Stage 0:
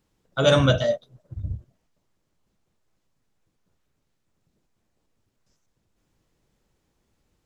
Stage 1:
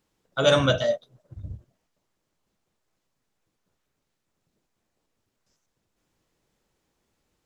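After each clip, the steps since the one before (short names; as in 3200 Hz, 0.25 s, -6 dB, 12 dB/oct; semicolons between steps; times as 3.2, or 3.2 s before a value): low shelf 210 Hz -8 dB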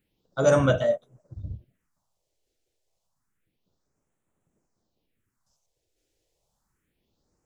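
phaser stages 4, 0.29 Hz, lowest notch 180–4700 Hz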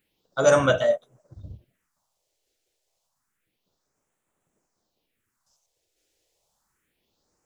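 low shelf 370 Hz -11.5 dB; gain +5.5 dB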